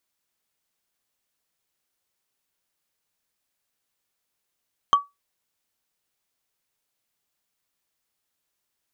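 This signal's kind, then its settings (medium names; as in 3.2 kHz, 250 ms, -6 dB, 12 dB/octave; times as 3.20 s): wood hit, lowest mode 1.14 kHz, decay 0.19 s, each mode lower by 11 dB, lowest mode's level -9 dB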